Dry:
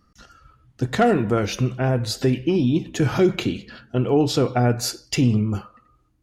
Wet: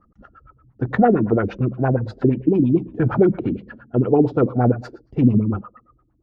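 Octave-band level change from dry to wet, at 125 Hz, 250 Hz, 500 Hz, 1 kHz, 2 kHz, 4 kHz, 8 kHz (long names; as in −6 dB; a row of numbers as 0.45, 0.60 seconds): +1.0 dB, +3.0 dB, +2.0 dB, +1.5 dB, −2.5 dB, below −20 dB, below −30 dB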